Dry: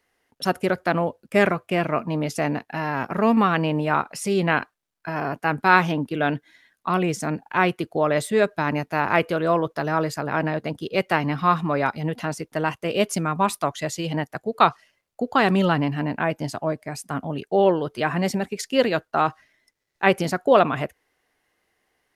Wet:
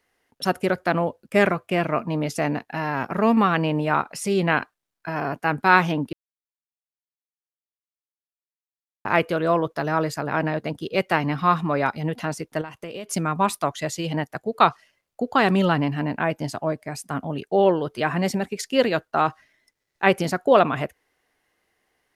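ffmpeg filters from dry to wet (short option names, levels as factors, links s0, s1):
-filter_complex "[0:a]asettb=1/sr,asplit=3[s0][s1][s2];[s0]atrim=end=12.614[s3];[s1]atrim=start=12.61:end=13.09,asetpts=PTS-STARTPTS,afade=t=in:d=0.004:c=qsin,afade=t=out:st=0.476:d=0.004:c=qsin,acompressor=threshold=0.0316:ratio=10:attack=3.2:release=140:knee=1:detection=peak[s4];[s2]atrim=start=13.086[s5];[s3][s4]acrossfade=d=0.004:c1=hsin:c2=qsin[s6];[s6][s5]acrossfade=d=0.004:c1=qsin:c2=hsin,asplit=3[s7][s8][s9];[s7]atrim=end=6.13,asetpts=PTS-STARTPTS,afade=t=out:st=6.126:d=0.004:c=hsin[s10];[s8]atrim=start=6.13:end=9.05,asetpts=PTS-STARTPTS,volume=0[s11];[s9]atrim=start=9.05,asetpts=PTS-STARTPTS,afade=t=in:d=0.004:c=hsin[s12];[s10][s11][s12]concat=n=3:v=0:a=1"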